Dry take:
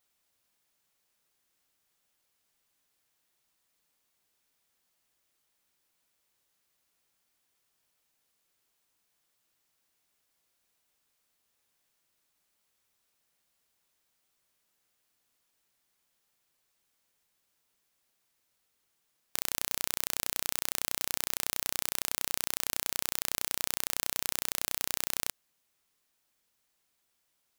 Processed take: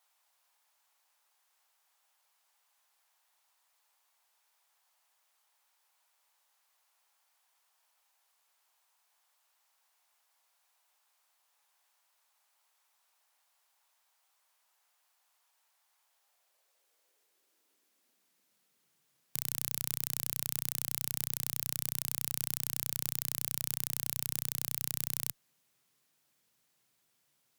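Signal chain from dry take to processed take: high-pass sweep 840 Hz -> 130 Hz, 16.01–19.14; added harmonics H 2 -12 dB, 4 -7 dB, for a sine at -2.5 dBFS; gain +1.5 dB

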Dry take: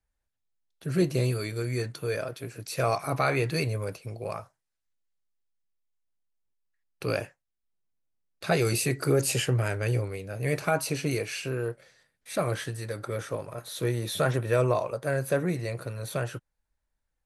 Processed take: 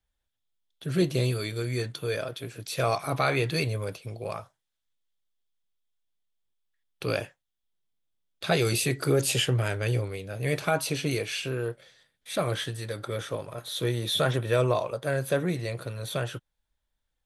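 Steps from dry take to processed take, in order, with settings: bell 3400 Hz +11 dB 0.36 oct

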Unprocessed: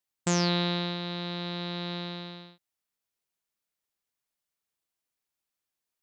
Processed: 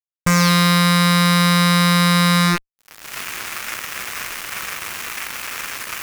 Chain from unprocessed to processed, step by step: recorder AGC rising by 23 dB/s; band shelf 1700 Hz +15.5 dB; fuzz box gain 45 dB, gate -50 dBFS

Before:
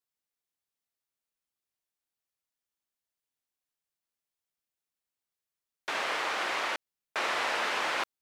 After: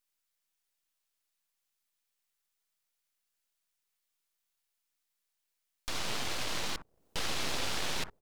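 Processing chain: tilt shelf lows -3 dB; three bands offset in time highs, mids, lows 60/480 ms, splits 170/650 Hz; full-wave rectifier; mismatched tape noise reduction encoder only; gain -1.5 dB

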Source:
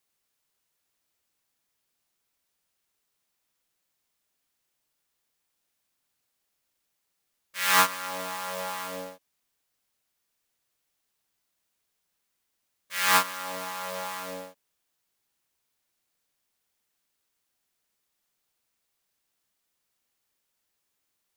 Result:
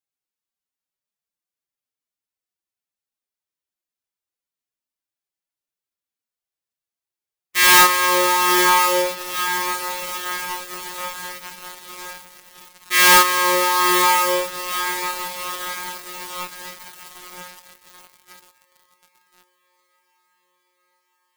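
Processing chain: formant-preserving pitch shift +11.5 st; diffused feedback echo 0.937 s, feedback 74%, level -13 dB; sample leveller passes 5

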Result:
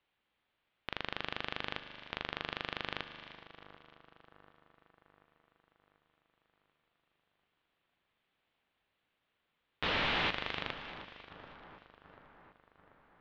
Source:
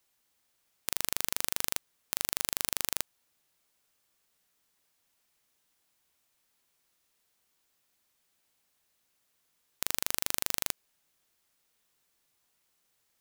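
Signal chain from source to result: 9.83–10.3 delta modulation 64 kbps, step -19 dBFS; steep low-pass 3500 Hz 36 dB/oct; split-band echo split 1600 Hz, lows 0.738 s, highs 0.311 s, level -13.5 dB; non-linear reverb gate 0.46 s flat, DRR 11.5 dB

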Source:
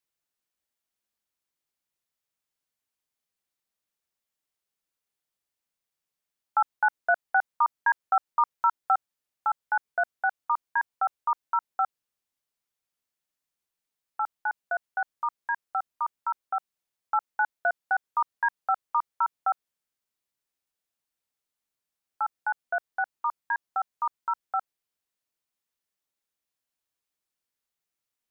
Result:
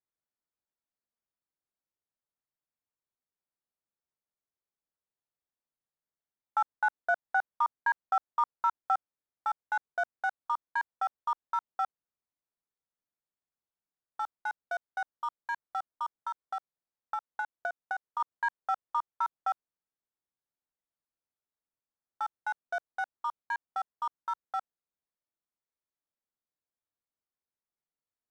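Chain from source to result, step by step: Wiener smoothing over 15 samples; 16.2–18.2 compressor, threshold -26 dBFS, peak gain reduction 5.5 dB; gain -4.5 dB

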